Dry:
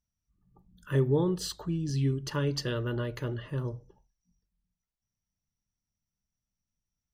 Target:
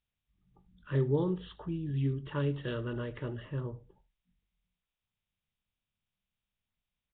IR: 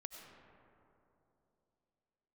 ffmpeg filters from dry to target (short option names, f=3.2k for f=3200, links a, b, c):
-filter_complex "[0:a]asplit=2[a][b];[b]adelay=21,volume=-12.5dB[c];[a][c]amix=inputs=2:normalize=0,asplit=2[d][e];[e]aecho=0:1:77:0.0944[f];[d][f]amix=inputs=2:normalize=0,volume=-3.5dB" -ar 8000 -c:a nellymoser